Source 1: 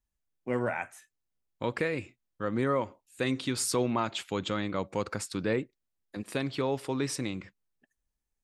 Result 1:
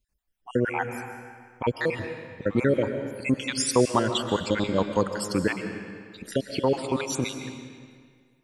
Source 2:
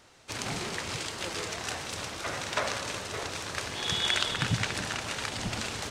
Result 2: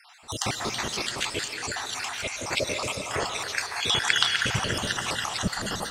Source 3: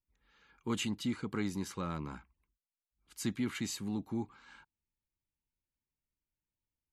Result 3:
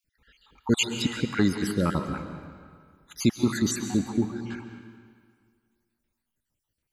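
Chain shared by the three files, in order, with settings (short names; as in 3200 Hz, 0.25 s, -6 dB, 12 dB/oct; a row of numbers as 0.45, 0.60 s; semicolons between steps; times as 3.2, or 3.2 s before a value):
random spectral dropouts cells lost 60%; digital reverb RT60 1.9 s, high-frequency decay 0.85×, pre-delay 95 ms, DRR 7 dB; match loudness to -27 LUFS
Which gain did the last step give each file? +8.5, +8.5, +13.5 dB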